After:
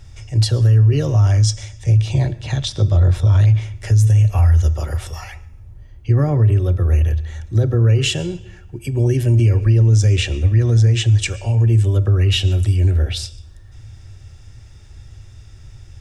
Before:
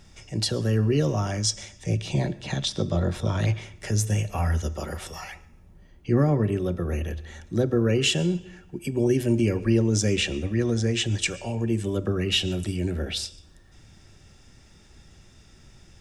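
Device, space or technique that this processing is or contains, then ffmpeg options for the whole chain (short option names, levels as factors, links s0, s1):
car stereo with a boomy subwoofer: -af "lowshelf=f=140:t=q:w=3:g=8.5,alimiter=limit=0.316:level=0:latency=1:release=33,volume=1.41"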